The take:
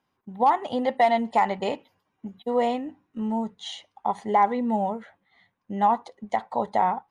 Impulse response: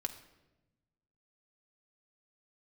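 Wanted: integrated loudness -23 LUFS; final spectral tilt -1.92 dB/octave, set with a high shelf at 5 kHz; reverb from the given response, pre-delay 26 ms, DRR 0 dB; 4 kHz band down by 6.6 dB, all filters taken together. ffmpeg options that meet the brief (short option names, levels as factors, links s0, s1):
-filter_complex "[0:a]equalizer=f=4000:t=o:g=-7.5,highshelf=f=5000:g=-4.5,asplit=2[s0][s1];[1:a]atrim=start_sample=2205,adelay=26[s2];[s1][s2]afir=irnorm=-1:irlink=0,volume=1[s3];[s0][s3]amix=inputs=2:normalize=0,volume=0.944"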